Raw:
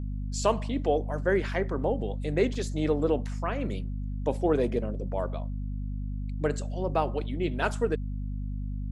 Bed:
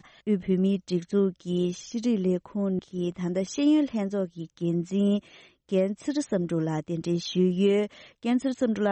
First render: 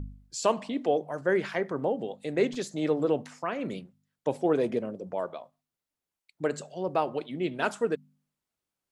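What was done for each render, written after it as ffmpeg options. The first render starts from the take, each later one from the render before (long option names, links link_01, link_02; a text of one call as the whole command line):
ffmpeg -i in.wav -af "bandreject=frequency=50:width_type=h:width=4,bandreject=frequency=100:width_type=h:width=4,bandreject=frequency=150:width_type=h:width=4,bandreject=frequency=200:width_type=h:width=4,bandreject=frequency=250:width_type=h:width=4" out.wav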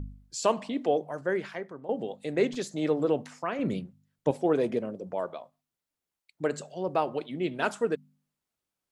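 ffmpeg -i in.wav -filter_complex "[0:a]asettb=1/sr,asplit=3[link_01][link_02][link_03];[link_01]atrim=end=3.594[link_04];[link_02]atrim=start=3.59:end=4.31,asetpts=PTS-STARTPTS,afade=type=in:duration=0.004:curve=qsin,afade=type=out:start_time=0.716:duration=0.004:curve=qsin,lowshelf=frequency=230:gain=11[link_05];[link_03]atrim=start=4.306[link_06];[link_04][link_05]acrossfade=duration=0.004:curve1=hsin:curve2=qsin[link_07];[link_07][link_06]acrossfade=duration=0.004:curve1=qsin:curve2=hsin,asplit=2[link_08][link_09];[link_08]atrim=end=1.89,asetpts=PTS-STARTPTS,afade=type=out:start_time=0.98:duration=0.91:silence=0.149624[link_10];[link_09]atrim=start=1.89,asetpts=PTS-STARTPTS,afade=type=in:duration=0.004:curve=hsin:silence=0.149624[link_11];[link_10][link_11]concat=n=2:v=0:a=1" out.wav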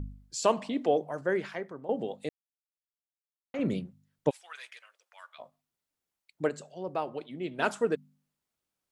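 ffmpeg -i in.wav -filter_complex "[0:a]asplit=3[link_01][link_02][link_03];[link_01]afade=type=out:start_time=4.29:duration=0.02[link_04];[link_02]highpass=frequency=1500:width=0.5412,highpass=frequency=1500:width=1.3066,afade=type=in:start_time=4.29:duration=0.02,afade=type=out:start_time=5.38:duration=0.02[link_05];[link_03]afade=type=in:start_time=5.38:duration=0.02[link_06];[link_04][link_05][link_06]amix=inputs=3:normalize=0,asplit=5[link_07][link_08][link_09][link_10][link_11];[link_07]atrim=end=2.29,asetpts=PTS-STARTPTS,afade=type=out:start_time=2.286:duration=0.004:curve=hsin[link_12];[link_08]atrim=start=2.29:end=3.54,asetpts=PTS-STARTPTS,volume=0[link_13];[link_09]atrim=start=3.54:end=6.492,asetpts=PTS-STARTPTS,afade=type=in:duration=0.004:curve=hsin[link_14];[link_10]atrim=start=6.488:end=7.582,asetpts=PTS-STARTPTS,volume=-5.5dB[link_15];[link_11]atrim=start=7.578[link_16];[link_12][link_13][link_14]concat=n=3:v=0:a=1[link_17];[link_17][link_15]acrossfade=duration=0.004:curve1=hsin:curve2=hsin[link_18];[link_18][link_16]acrossfade=duration=0.004:curve1=hsin:curve2=hsin" out.wav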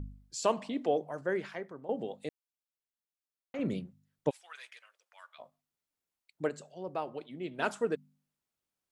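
ffmpeg -i in.wav -af "volume=-3.5dB" out.wav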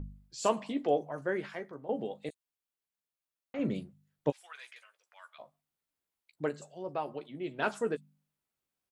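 ffmpeg -i in.wav -filter_complex "[0:a]asplit=2[link_01][link_02];[link_02]adelay=14,volume=-9dB[link_03];[link_01][link_03]amix=inputs=2:normalize=0,acrossover=split=5900[link_04][link_05];[link_05]adelay=40[link_06];[link_04][link_06]amix=inputs=2:normalize=0" out.wav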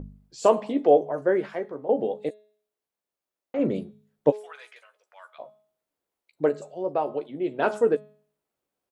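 ffmpeg -i in.wav -af "equalizer=frequency=490:width_type=o:width=2.3:gain=12,bandreject=frequency=211.3:width_type=h:width=4,bandreject=frequency=422.6:width_type=h:width=4,bandreject=frequency=633.9:width_type=h:width=4,bandreject=frequency=845.2:width_type=h:width=4,bandreject=frequency=1056.5:width_type=h:width=4,bandreject=frequency=1267.8:width_type=h:width=4,bandreject=frequency=1479.1:width_type=h:width=4,bandreject=frequency=1690.4:width_type=h:width=4,bandreject=frequency=1901.7:width_type=h:width=4,bandreject=frequency=2113:width_type=h:width=4,bandreject=frequency=2324.3:width_type=h:width=4,bandreject=frequency=2535.6:width_type=h:width=4,bandreject=frequency=2746.9:width_type=h:width=4,bandreject=frequency=2958.2:width_type=h:width=4,bandreject=frequency=3169.5:width_type=h:width=4,bandreject=frequency=3380.8:width_type=h:width=4,bandreject=frequency=3592.1:width_type=h:width=4,bandreject=frequency=3803.4:width_type=h:width=4,bandreject=frequency=4014.7:width_type=h:width=4,bandreject=frequency=4226:width_type=h:width=4" out.wav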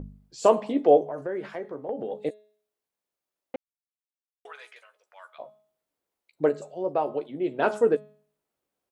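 ffmpeg -i in.wav -filter_complex "[0:a]asettb=1/sr,asplit=3[link_01][link_02][link_03];[link_01]atrim=end=1.074[link_04];[link_02]atrim=start=1.07:end=2.12,asetpts=PTS-STARTPTS,afade=type=in:duration=0.004:curve=qsin,afade=type=out:start_time=1.046:duration=0.004:curve=qsin,acompressor=threshold=-30dB:ratio=3:attack=3.2:release=140:knee=1:detection=peak[link_05];[link_03]atrim=start=2.116[link_06];[link_04][link_05]acrossfade=duration=0.004:curve1=hsin:curve2=qsin[link_07];[link_07][link_06]acrossfade=duration=0.004:curve1=qsin:curve2=hsin,asplit=3[link_08][link_09][link_10];[link_08]atrim=end=3.56,asetpts=PTS-STARTPTS,afade=type=out:start_time=3.556:duration=0.004:curve=hsin[link_11];[link_09]atrim=start=3.56:end=4.45,asetpts=PTS-STARTPTS,volume=0[link_12];[link_10]atrim=start=4.45,asetpts=PTS-STARTPTS,afade=type=in:duration=0.004:curve=hsin[link_13];[link_11][link_12][link_13]concat=n=3:v=0:a=1" out.wav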